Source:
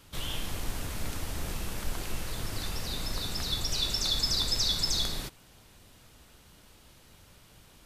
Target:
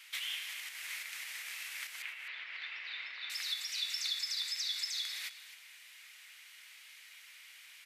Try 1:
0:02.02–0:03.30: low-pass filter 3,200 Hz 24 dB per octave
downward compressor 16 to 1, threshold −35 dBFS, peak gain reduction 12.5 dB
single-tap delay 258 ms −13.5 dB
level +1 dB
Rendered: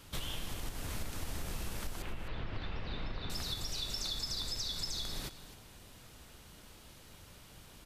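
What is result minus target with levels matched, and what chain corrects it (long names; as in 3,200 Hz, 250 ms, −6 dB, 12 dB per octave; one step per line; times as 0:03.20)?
2,000 Hz band −6.0 dB
0:02.02–0:03.30: low-pass filter 3,200 Hz 24 dB per octave
downward compressor 16 to 1, threshold −35 dBFS, peak gain reduction 12.5 dB
high-pass with resonance 2,100 Hz, resonance Q 4
single-tap delay 258 ms −13.5 dB
level +1 dB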